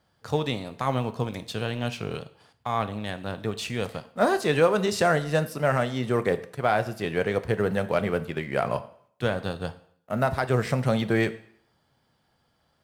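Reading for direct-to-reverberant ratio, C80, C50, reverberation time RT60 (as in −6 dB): 11.5 dB, 18.5 dB, 16.0 dB, 0.60 s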